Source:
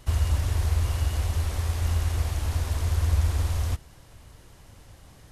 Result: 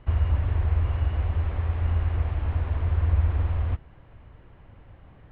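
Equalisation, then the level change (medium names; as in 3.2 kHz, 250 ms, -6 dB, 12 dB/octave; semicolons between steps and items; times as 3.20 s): low-pass 3.1 kHz 24 dB/octave; distance through air 360 m; +1.0 dB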